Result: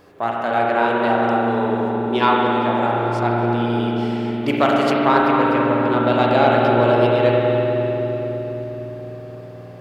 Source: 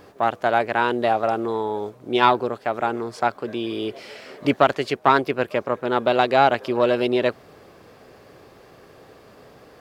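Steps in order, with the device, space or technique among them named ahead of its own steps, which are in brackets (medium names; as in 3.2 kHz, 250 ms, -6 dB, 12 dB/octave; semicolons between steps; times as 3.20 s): dub delay into a spring reverb (filtered feedback delay 255 ms, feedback 75%, low-pass 960 Hz, level -5.5 dB; spring tank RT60 3.4 s, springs 34/51 ms, chirp 45 ms, DRR -3 dB); 4.48–5.05 s: treble shelf 4.8 kHz +8.5 dB; trim -2.5 dB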